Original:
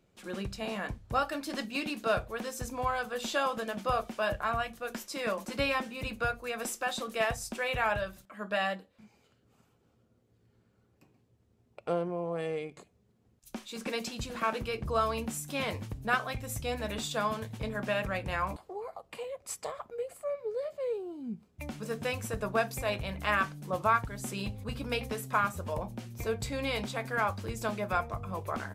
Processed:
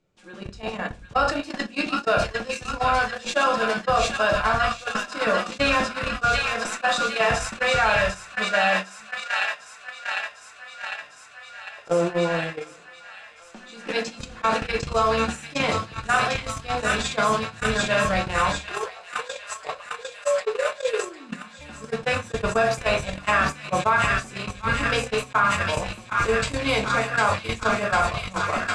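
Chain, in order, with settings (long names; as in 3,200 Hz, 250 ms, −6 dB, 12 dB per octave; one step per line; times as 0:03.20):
low-pass filter 8,100 Hz 24 dB per octave
mains-hum notches 60/120/180/240/300/360/420/480/540 Hz
on a send: delay with a high-pass on its return 752 ms, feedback 84%, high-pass 1,500 Hz, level −3 dB
on the sum: rectangular room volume 31 cubic metres, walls mixed, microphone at 0.4 metres
noise gate −29 dBFS, range −47 dB
envelope flattener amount 70%
level +3 dB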